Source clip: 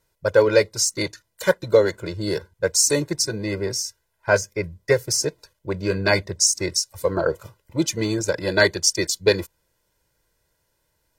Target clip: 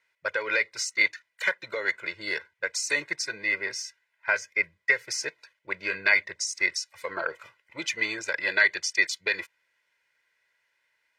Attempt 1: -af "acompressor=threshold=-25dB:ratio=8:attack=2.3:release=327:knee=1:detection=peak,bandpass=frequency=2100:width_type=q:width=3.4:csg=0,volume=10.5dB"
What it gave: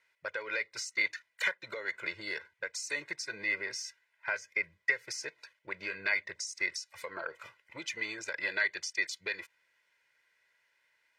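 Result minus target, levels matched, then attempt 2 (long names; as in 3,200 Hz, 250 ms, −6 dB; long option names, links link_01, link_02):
downward compressor: peak gain reduction +9 dB
-af "acompressor=threshold=-14.5dB:ratio=8:attack=2.3:release=327:knee=1:detection=peak,bandpass=frequency=2100:width_type=q:width=3.4:csg=0,volume=10.5dB"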